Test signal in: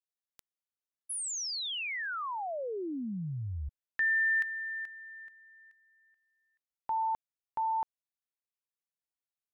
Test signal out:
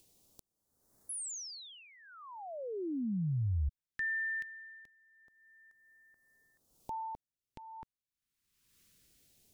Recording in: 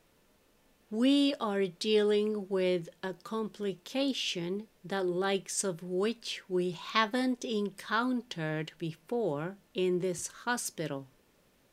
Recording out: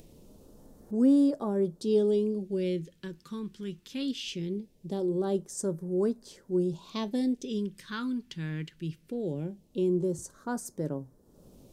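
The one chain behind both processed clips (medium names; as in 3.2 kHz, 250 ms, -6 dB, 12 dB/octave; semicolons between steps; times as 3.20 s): tilt shelf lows +4.5 dB, about 840 Hz; upward compressor, threshold -42 dBFS; phase shifter stages 2, 0.21 Hz, lowest notch 620–2700 Hz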